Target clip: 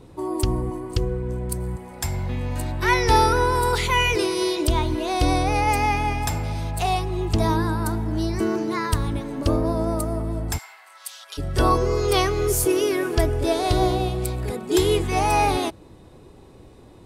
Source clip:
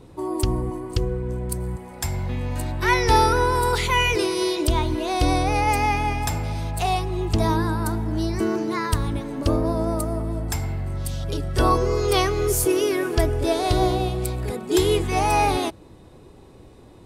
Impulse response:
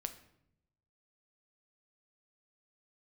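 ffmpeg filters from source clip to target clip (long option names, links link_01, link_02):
-filter_complex "[0:a]asplit=3[link_01][link_02][link_03];[link_01]afade=type=out:start_time=10.57:duration=0.02[link_04];[link_02]highpass=frequency=1000:width=0.5412,highpass=frequency=1000:width=1.3066,afade=type=in:start_time=10.57:duration=0.02,afade=type=out:start_time=11.37:duration=0.02[link_05];[link_03]afade=type=in:start_time=11.37:duration=0.02[link_06];[link_04][link_05][link_06]amix=inputs=3:normalize=0"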